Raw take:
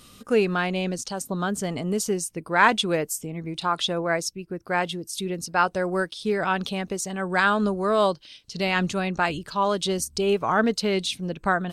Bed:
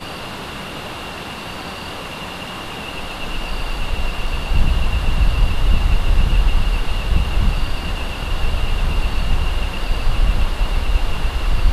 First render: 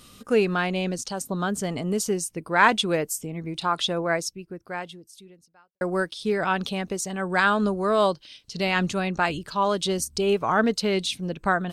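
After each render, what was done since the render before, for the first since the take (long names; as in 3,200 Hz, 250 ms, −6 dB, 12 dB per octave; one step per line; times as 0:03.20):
0:04.13–0:05.81: fade out quadratic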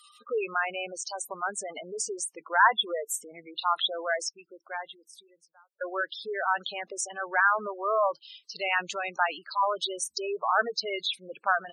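high-pass filter 670 Hz 12 dB per octave
gate on every frequency bin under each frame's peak −10 dB strong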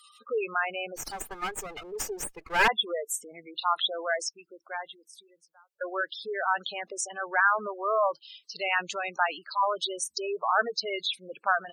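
0:00.96–0:02.68: lower of the sound and its delayed copy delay 2.4 ms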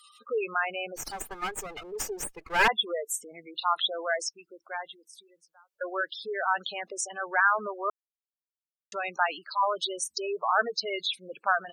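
0:07.90–0:08.92: silence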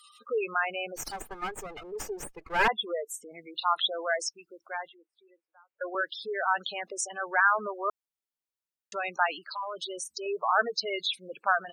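0:01.16–0:03.31: high-shelf EQ 2,300 Hz −7.5 dB
0:04.89–0:05.95: elliptic band-pass filter 300–2,600 Hz
0:09.44–0:10.26: downward compressor 4 to 1, threshold −33 dBFS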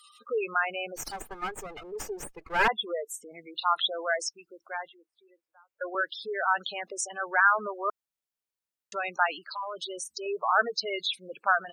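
dynamic equaliser 1,400 Hz, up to +3 dB, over −41 dBFS, Q 5.7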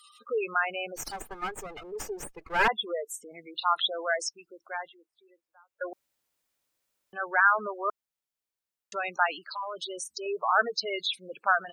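0:05.93–0:07.13: fill with room tone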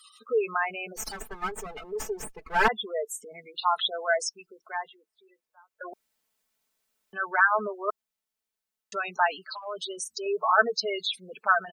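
comb filter 4.6 ms, depth 78%
dynamic equaliser 2,500 Hz, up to −4 dB, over −42 dBFS, Q 2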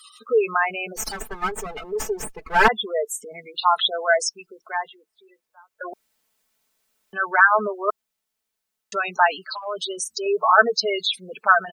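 level +6.5 dB
brickwall limiter −2 dBFS, peak gain reduction 1 dB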